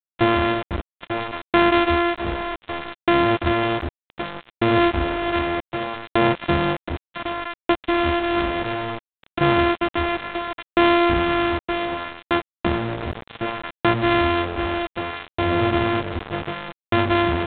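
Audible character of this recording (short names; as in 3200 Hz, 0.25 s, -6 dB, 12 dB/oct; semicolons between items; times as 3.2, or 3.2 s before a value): a buzz of ramps at a fixed pitch in blocks of 128 samples; tremolo saw down 0.65 Hz, depth 95%; a quantiser's noise floor 6-bit, dither none; G.726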